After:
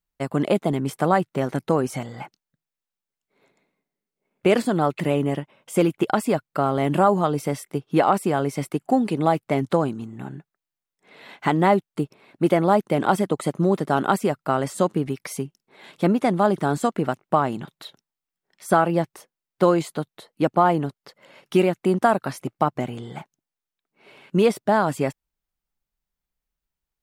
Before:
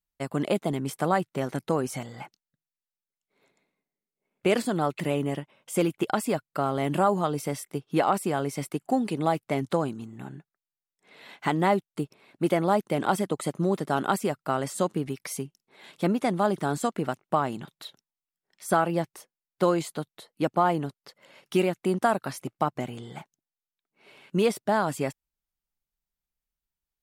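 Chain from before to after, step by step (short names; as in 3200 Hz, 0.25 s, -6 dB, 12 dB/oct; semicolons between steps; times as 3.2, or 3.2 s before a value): bell 12000 Hz -5.5 dB 2.9 oct; gain +5.5 dB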